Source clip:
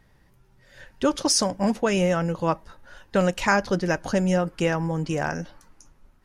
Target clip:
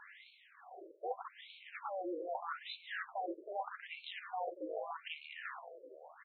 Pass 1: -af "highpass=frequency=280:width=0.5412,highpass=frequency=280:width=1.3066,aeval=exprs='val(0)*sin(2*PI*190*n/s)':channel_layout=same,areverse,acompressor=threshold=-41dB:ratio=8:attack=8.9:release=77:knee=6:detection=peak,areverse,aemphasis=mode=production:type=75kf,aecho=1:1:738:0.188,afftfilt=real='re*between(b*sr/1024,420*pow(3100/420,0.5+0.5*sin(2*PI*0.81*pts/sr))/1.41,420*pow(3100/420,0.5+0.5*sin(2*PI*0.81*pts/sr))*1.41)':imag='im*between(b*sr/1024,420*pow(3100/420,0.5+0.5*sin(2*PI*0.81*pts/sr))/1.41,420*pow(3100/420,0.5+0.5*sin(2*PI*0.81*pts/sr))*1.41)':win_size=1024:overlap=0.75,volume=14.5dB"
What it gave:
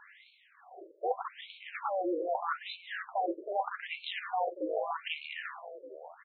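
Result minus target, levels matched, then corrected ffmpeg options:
downward compressor: peak gain reduction −8.5 dB
-af "highpass=frequency=280:width=0.5412,highpass=frequency=280:width=1.3066,aeval=exprs='val(0)*sin(2*PI*190*n/s)':channel_layout=same,areverse,acompressor=threshold=-50.5dB:ratio=8:attack=8.9:release=77:knee=6:detection=peak,areverse,aemphasis=mode=production:type=75kf,aecho=1:1:738:0.188,afftfilt=real='re*between(b*sr/1024,420*pow(3100/420,0.5+0.5*sin(2*PI*0.81*pts/sr))/1.41,420*pow(3100/420,0.5+0.5*sin(2*PI*0.81*pts/sr))*1.41)':imag='im*between(b*sr/1024,420*pow(3100/420,0.5+0.5*sin(2*PI*0.81*pts/sr))/1.41,420*pow(3100/420,0.5+0.5*sin(2*PI*0.81*pts/sr))*1.41)':win_size=1024:overlap=0.75,volume=14.5dB"

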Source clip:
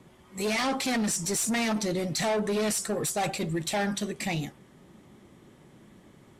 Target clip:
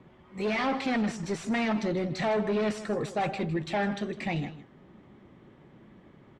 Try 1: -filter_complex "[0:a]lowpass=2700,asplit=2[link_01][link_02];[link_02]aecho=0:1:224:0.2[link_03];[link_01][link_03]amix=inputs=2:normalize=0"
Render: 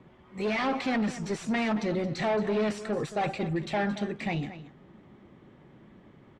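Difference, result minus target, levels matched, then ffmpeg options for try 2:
echo 68 ms late
-filter_complex "[0:a]lowpass=2700,asplit=2[link_01][link_02];[link_02]aecho=0:1:156:0.2[link_03];[link_01][link_03]amix=inputs=2:normalize=0"

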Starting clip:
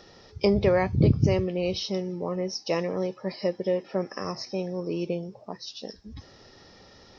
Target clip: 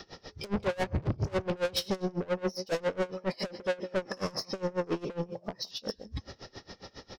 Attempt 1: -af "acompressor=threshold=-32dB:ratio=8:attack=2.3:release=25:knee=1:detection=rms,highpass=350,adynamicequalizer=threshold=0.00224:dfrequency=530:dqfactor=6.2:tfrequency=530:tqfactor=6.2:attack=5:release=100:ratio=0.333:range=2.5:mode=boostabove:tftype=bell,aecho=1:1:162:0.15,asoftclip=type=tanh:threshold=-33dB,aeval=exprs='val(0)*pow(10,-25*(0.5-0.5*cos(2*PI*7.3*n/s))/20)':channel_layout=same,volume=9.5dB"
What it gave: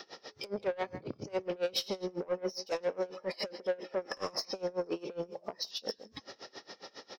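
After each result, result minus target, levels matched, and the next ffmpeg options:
downward compressor: peak gain reduction +8.5 dB; 250 Hz band −4.0 dB
-af "acompressor=threshold=-22dB:ratio=8:attack=2.3:release=25:knee=1:detection=rms,highpass=350,adynamicequalizer=threshold=0.00224:dfrequency=530:dqfactor=6.2:tfrequency=530:tqfactor=6.2:attack=5:release=100:ratio=0.333:range=2.5:mode=boostabove:tftype=bell,aecho=1:1:162:0.15,asoftclip=type=tanh:threshold=-33dB,aeval=exprs='val(0)*pow(10,-25*(0.5-0.5*cos(2*PI*7.3*n/s))/20)':channel_layout=same,volume=9.5dB"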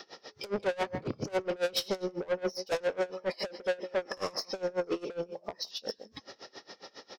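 250 Hz band −4.0 dB
-af "acompressor=threshold=-22dB:ratio=8:attack=2.3:release=25:knee=1:detection=rms,adynamicequalizer=threshold=0.00224:dfrequency=530:dqfactor=6.2:tfrequency=530:tqfactor=6.2:attack=5:release=100:ratio=0.333:range=2.5:mode=boostabove:tftype=bell,aecho=1:1:162:0.15,asoftclip=type=tanh:threshold=-33dB,aeval=exprs='val(0)*pow(10,-25*(0.5-0.5*cos(2*PI*7.3*n/s))/20)':channel_layout=same,volume=9.5dB"

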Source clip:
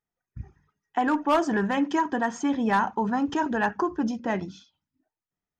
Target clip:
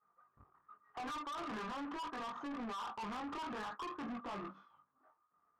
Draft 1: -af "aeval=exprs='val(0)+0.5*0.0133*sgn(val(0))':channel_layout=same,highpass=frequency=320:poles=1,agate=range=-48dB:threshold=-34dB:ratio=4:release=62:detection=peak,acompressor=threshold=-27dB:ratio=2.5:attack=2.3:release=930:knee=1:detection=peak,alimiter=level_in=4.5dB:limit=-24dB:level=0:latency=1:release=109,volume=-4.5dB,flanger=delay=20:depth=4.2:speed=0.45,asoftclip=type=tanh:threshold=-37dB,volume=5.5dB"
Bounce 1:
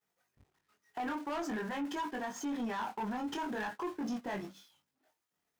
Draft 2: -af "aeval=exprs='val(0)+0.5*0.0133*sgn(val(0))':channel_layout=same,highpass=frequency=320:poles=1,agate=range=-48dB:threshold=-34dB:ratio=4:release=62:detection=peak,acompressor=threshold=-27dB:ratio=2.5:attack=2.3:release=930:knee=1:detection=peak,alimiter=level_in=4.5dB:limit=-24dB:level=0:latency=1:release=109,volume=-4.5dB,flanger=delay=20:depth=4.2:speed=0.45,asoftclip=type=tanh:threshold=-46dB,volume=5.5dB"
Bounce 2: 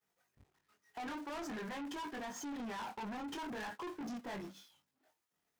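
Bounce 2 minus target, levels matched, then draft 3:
1,000 Hz band −2.5 dB
-af "aeval=exprs='val(0)+0.5*0.0133*sgn(val(0))':channel_layout=same,highpass=frequency=320:poles=1,agate=range=-48dB:threshold=-34dB:ratio=4:release=62:detection=peak,acompressor=threshold=-27dB:ratio=2.5:attack=2.3:release=930:knee=1:detection=peak,lowpass=frequency=1200:width_type=q:width=15,alimiter=level_in=4.5dB:limit=-24dB:level=0:latency=1:release=109,volume=-4.5dB,flanger=delay=20:depth=4.2:speed=0.45,asoftclip=type=tanh:threshold=-46dB,volume=5.5dB"

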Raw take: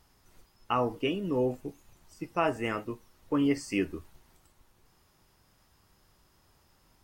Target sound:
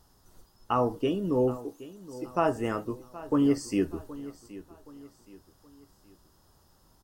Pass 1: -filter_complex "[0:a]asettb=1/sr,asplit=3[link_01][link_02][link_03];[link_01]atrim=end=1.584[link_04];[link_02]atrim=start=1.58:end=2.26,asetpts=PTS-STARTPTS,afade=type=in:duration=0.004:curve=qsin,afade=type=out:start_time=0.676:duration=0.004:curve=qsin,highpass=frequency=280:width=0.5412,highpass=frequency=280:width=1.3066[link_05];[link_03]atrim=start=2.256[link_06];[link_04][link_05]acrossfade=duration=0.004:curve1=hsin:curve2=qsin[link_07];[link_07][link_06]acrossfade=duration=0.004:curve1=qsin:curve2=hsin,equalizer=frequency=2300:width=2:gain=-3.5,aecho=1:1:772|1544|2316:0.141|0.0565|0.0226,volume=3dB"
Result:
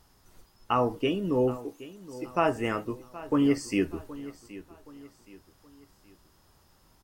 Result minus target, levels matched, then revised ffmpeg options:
2,000 Hz band +5.0 dB
-filter_complex "[0:a]asettb=1/sr,asplit=3[link_01][link_02][link_03];[link_01]atrim=end=1.584[link_04];[link_02]atrim=start=1.58:end=2.26,asetpts=PTS-STARTPTS,afade=type=in:duration=0.004:curve=qsin,afade=type=out:start_time=0.676:duration=0.004:curve=qsin,highpass=frequency=280:width=0.5412,highpass=frequency=280:width=1.3066[link_05];[link_03]atrim=start=2.256[link_06];[link_04][link_05]acrossfade=duration=0.004:curve1=hsin:curve2=qsin[link_07];[link_07][link_06]acrossfade=duration=0.004:curve1=qsin:curve2=hsin,equalizer=frequency=2300:width=2:gain=-13.5,aecho=1:1:772|1544|2316:0.141|0.0565|0.0226,volume=3dB"

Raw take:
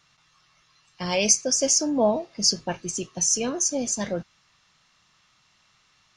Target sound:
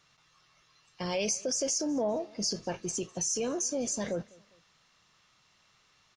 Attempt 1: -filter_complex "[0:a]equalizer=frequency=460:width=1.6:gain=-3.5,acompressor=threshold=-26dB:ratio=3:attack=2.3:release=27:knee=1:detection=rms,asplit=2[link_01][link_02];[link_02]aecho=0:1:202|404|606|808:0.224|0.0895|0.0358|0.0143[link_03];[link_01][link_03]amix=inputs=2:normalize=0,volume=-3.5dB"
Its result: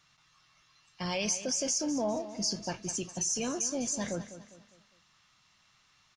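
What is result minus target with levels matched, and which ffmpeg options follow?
echo-to-direct +11.5 dB; 500 Hz band −3.0 dB
-filter_complex "[0:a]equalizer=frequency=460:width=1.6:gain=5.5,acompressor=threshold=-26dB:ratio=3:attack=2.3:release=27:knee=1:detection=rms,asplit=2[link_01][link_02];[link_02]aecho=0:1:202|404:0.0596|0.0238[link_03];[link_01][link_03]amix=inputs=2:normalize=0,volume=-3.5dB"

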